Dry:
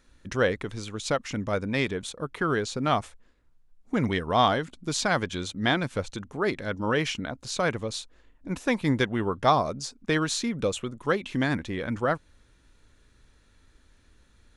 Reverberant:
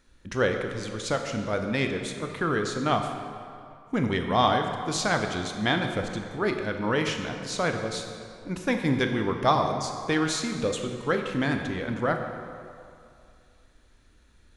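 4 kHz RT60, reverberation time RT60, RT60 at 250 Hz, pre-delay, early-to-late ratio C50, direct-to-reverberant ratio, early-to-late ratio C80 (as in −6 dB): 1.6 s, 2.4 s, 2.3 s, 20 ms, 5.5 dB, 4.5 dB, 6.5 dB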